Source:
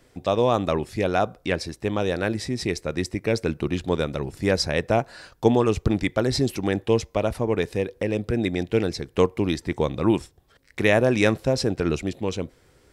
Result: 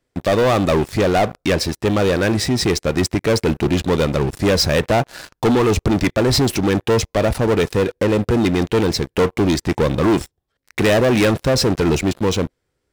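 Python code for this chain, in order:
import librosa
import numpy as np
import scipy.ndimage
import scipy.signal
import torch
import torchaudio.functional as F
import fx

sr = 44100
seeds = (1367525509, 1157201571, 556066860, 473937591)

y = fx.leveller(x, sr, passes=5)
y = F.gain(torch.from_numpy(y), -6.0).numpy()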